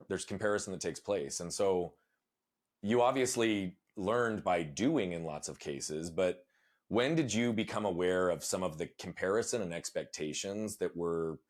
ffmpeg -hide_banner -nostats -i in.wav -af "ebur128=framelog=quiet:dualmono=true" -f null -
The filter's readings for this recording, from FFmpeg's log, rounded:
Integrated loudness:
  I:         -31.2 LUFS
  Threshold: -41.3 LUFS
Loudness range:
  LRA:         2.2 LU
  Threshold: -51.2 LUFS
  LRA low:   -32.2 LUFS
  LRA high:  -30.1 LUFS